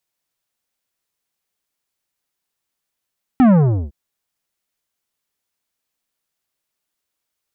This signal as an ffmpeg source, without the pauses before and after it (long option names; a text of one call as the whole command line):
ffmpeg -f lavfi -i "aevalsrc='0.355*clip((0.51-t)/0.41,0,1)*tanh(3.98*sin(2*PI*270*0.51/log(65/270)*(exp(log(65/270)*t/0.51)-1)))/tanh(3.98)':duration=0.51:sample_rate=44100" out.wav